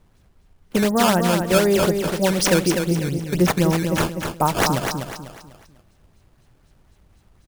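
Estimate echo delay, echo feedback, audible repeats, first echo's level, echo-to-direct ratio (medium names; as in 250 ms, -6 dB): 248 ms, 35%, 4, -6.0 dB, -5.5 dB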